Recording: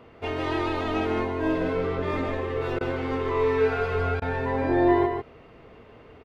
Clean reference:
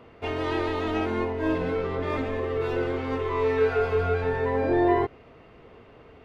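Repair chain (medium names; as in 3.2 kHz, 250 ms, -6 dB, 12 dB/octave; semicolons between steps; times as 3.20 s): interpolate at 2.79/4.20 s, 17 ms; inverse comb 151 ms -5.5 dB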